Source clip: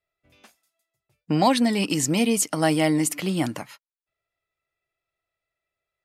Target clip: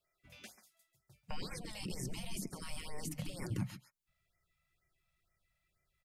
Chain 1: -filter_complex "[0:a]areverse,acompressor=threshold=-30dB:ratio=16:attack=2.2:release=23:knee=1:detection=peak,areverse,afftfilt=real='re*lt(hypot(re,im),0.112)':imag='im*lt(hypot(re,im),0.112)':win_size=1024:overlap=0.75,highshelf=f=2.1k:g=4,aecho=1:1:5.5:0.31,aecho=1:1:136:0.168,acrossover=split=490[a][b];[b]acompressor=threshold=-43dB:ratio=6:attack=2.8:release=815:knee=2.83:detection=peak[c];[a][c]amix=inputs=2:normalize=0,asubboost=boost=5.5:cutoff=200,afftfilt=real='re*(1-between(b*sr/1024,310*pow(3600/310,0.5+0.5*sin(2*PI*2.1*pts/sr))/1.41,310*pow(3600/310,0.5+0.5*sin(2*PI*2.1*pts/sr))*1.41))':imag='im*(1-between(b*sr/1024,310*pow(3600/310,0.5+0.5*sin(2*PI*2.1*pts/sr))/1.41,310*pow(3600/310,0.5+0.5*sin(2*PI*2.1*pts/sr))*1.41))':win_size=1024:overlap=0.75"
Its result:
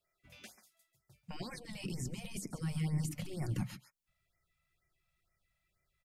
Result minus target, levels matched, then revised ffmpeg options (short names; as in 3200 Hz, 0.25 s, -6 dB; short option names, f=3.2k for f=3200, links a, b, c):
compressor: peak gain reduction +9.5 dB
-filter_complex "[0:a]areverse,acompressor=threshold=-20dB:ratio=16:attack=2.2:release=23:knee=1:detection=peak,areverse,afftfilt=real='re*lt(hypot(re,im),0.112)':imag='im*lt(hypot(re,im),0.112)':win_size=1024:overlap=0.75,highshelf=f=2.1k:g=4,aecho=1:1:5.5:0.31,aecho=1:1:136:0.168,acrossover=split=490[a][b];[b]acompressor=threshold=-43dB:ratio=6:attack=2.8:release=815:knee=2.83:detection=peak[c];[a][c]amix=inputs=2:normalize=0,asubboost=boost=5.5:cutoff=200,afftfilt=real='re*(1-between(b*sr/1024,310*pow(3600/310,0.5+0.5*sin(2*PI*2.1*pts/sr))/1.41,310*pow(3600/310,0.5+0.5*sin(2*PI*2.1*pts/sr))*1.41))':imag='im*(1-between(b*sr/1024,310*pow(3600/310,0.5+0.5*sin(2*PI*2.1*pts/sr))/1.41,310*pow(3600/310,0.5+0.5*sin(2*PI*2.1*pts/sr))*1.41))':win_size=1024:overlap=0.75"